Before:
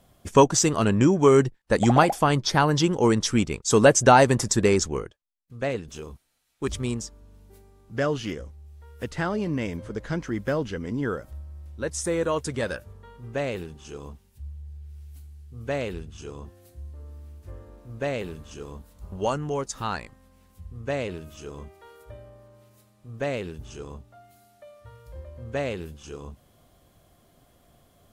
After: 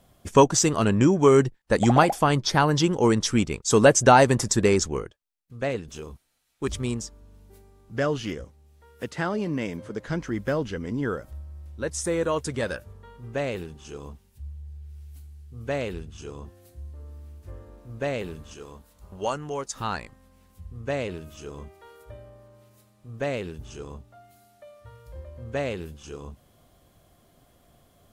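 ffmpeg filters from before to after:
ffmpeg -i in.wav -filter_complex "[0:a]asettb=1/sr,asplit=3[link_01][link_02][link_03];[link_01]atrim=end=8.444[link_04];[link_02]atrim=start=8.44:end=10.08,asetpts=PTS-STARTPTS,afade=type=in:duration=0.004:curve=qsin,afade=type=out:start_time=1.636:duration=0.004:curve=qsin,highpass=130[link_05];[link_03]atrim=start=10.076[link_06];[link_04][link_05]acrossfade=duration=0.004:curve1=hsin:curve2=qsin[link_07];[link_07][link_06]acrossfade=duration=0.004:curve1=qsin:curve2=hsin,asettb=1/sr,asplit=3[link_08][link_09][link_10];[link_08]atrim=end=18.534[link_11];[link_09]atrim=start=18.53:end=19.76,asetpts=PTS-STARTPTS,afade=type=in:duration=0.004:curve=qsin,afade=type=out:start_time=1.226:duration=0.004:curve=qsin,lowshelf=frequency=370:gain=-7.5[link_12];[link_10]atrim=start=19.756[link_13];[link_11][link_12]acrossfade=duration=0.004:curve1=hsin:curve2=qsin[link_14];[link_14][link_13]acrossfade=duration=0.004:curve1=qsin:curve2=hsin" out.wav

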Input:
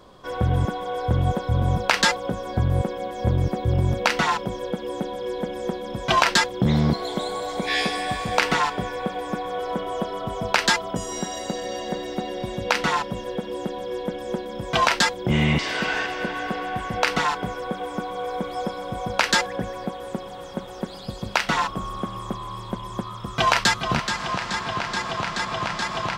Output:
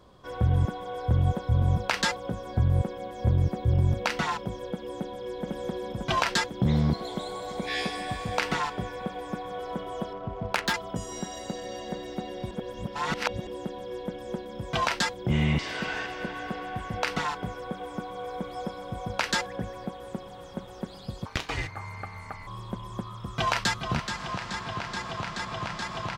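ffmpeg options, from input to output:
ffmpeg -i in.wav -filter_complex "[0:a]asplit=2[link_01][link_02];[link_02]afade=type=in:start_time=4.97:duration=0.01,afade=type=out:start_time=5.42:duration=0.01,aecho=0:1:500|1000|1500|2000|2500|3000|3500|4000|4500|5000|5500|6000:0.841395|0.631046|0.473285|0.354964|0.266223|0.199667|0.14975|0.112313|0.0842345|0.0631759|0.0473819|0.0355364[link_03];[link_01][link_03]amix=inputs=2:normalize=0,asettb=1/sr,asplit=3[link_04][link_05][link_06];[link_04]atrim=end=10.134[link_07];[link_05]atrim=start=10.13:end=10.74,asetpts=PTS-STARTPTS,afade=type=in:duration=0.004:curve=qsin,afade=type=out:start_time=0.606:duration=0.004:curve=qsin,adynamicsmooth=sensitivity=1.5:basefreq=1400[link_08];[link_06]atrim=start=10.736[link_09];[link_07][link_08]acrossfade=duration=0.004:curve1=hsin:curve2=qsin[link_10];[link_10][link_09]acrossfade=duration=0.004:curve1=qsin:curve2=hsin,asettb=1/sr,asplit=3[link_11][link_12][link_13];[link_11]atrim=end=21.254[link_14];[link_12]atrim=start=21.25:end=22.47,asetpts=PTS-STARTPTS,afade=type=in:duration=0.004:curve=qsin,afade=type=out:start_time=1.216:duration=0.004:curve=qsin,aeval=exprs='val(0)*sin(2*PI*1000*n/s)':channel_layout=same[link_15];[link_13]atrim=start=22.466[link_16];[link_14][link_15]acrossfade=duration=0.004:curve1=hsin:curve2=qsin[link_17];[link_17][link_16]acrossfade=duration=0.004:curve1=qsin:curve2=hsin,asplit=3[link_18][link_19][link_20];[link_18]atrim=end=12.512[link_21];[link_19]atrim=start=12.508:end=13.472,asetpts=PTS-STARTPTS,areverse[link_22];[link_20]atrim=start=13.468[link_23];[link_21][link_22]acrossfade=duration=0.004:curve1=hsin:curve2=hsin[link_24];[link_24][link_23]acrossfade=duration=0.004:curve1=hsin:curve2=hsin,equalizer=frequency=82:width_type=o:width=2.1:gain=7,volume=-7.5dB" out.wav

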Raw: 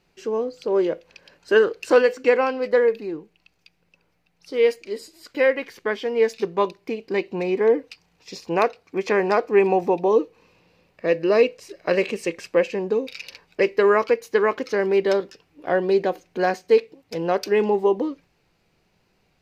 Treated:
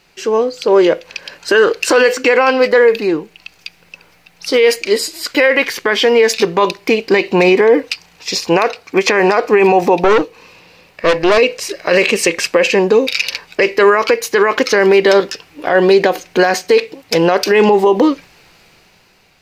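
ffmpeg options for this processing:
ffmpeg -i in.wav -filter_complex "[0:a]asettb=1/sr,asplit=3[link_01][link_02][link_03];[link_01]atrim=end=10.044[link_04];[link_02]atrim=start=10.04:end=11.38,asetpts=PTS-STARTPTS,afade=type=in:duration=0.004:curve=qsin,afade=type=out:start_time=1.336:duration=0.004:curve=qsin,aeval=exprs='(tanh(11.2*val(0)+0.55)-tanh(0.55))/11.2':channel_layout=same[link_05];[link_03]atrim=start=11.376[link_06];[link_04][link_05]acrossfade=duration=0.004:curve1=hsin:curve2=qsin[link_07];[link_07][link_06]acrossfade=duration=0.004:curve1=qsin:curve2=hsin,tiltshelf=frequency=700:gain=-5,dynaudnorm=framelen=160:gausssize=11:maxgain=11.5dB,alimiter=level_in=13dB:limit=-1dB:release=50:level=0:latency=1,volume=-1dB" out.wav

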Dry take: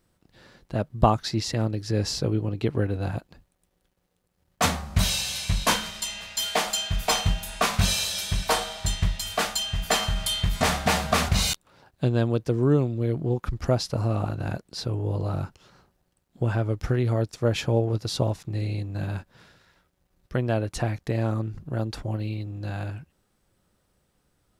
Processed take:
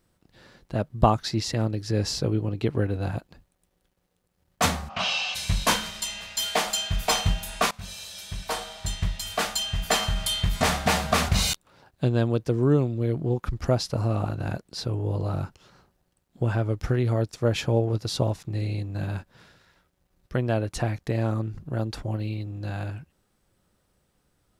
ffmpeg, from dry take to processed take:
ffmpeg -i in.wav -filter_complex "[0:a]asplit=3[link_01][link_02][link_03];[link_01]afade=type=out:start_time=4.88:duration=0.02[link_04];[link_02]highpass=340,equalizer=frequency=360:width_type=q:width=4:gain=-10,equalizer=frequency=750:width_type=q:width=4:gain=10,equalizer=frequency=1200:width_type=q:width=4:gain=8,equalizer=frequency=1900:width_type=q:width=4:gain=-4,equalizer=frequency=2800:width_type=q:width=4:gain=10,equalizer=frequency=4000:width_type=q:width=4:gain=-5,lowpass=frequency=5000:width=0.5412,lowpass=frequency=5000:width=1.3066,afade=type=in:start_time=4.88:duration=0.02,afade=type=out:start_time=5.34:duration=0.02[link_05];[link_03]afade=type=in:start_time=5.34:duration=0.02[link_06];[link_04][link_05][link_06]amix=inputs=3:normalize=0,asplit=2[link_07][link_08];[link_07]atrim=end=7.71,asetpts=PTS-STARTPTS,afade=type=out:start_time=7.706:duration=0.004:curve=hsin:silence=0.0794328[link_09];[link_08]atrim=start=7.71,asetpts=PTS-STARTPTS,afade=type=in:duration=1.91:silence=0.0794328[link_10];[link_09][link_10]concat=n=2:v=0:a=1" out.wav

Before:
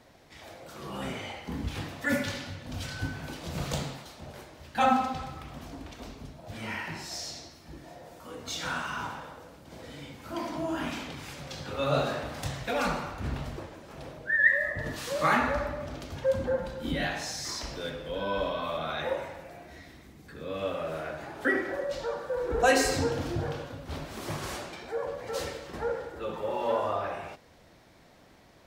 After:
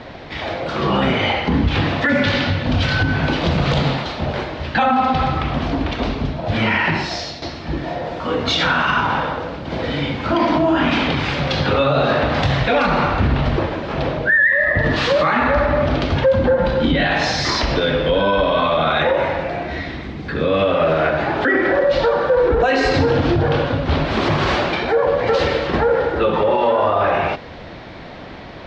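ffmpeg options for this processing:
ffmpeg -i in.wav -filter_complex "[0:a]asplit=2[link_01][link_02];[link_01]atrim=end=7.42,asetpts=PTS-STARTPTS,afade=type=out:start_time=6.87:duration=0.55:silence=0.266073[link_03];[link_02]atrim=start=7.42,asetpts=PTS-STARTPTS,afade=type=in:duration=0.004:curve=hsin:silence=0.266073[link_04];[link_03][link_04]concat=n=2:v=0:a=1,lowpass=frequency=4100:width=0.5412,lowpass=frequency=4100:width=1.3066,acompressor=threshold=-38dB:ratio=1.5,alimiter=level_in=29.5dB:limit=-1dB:release=50:level=0:latency=1,volume=-7dB" out.wav

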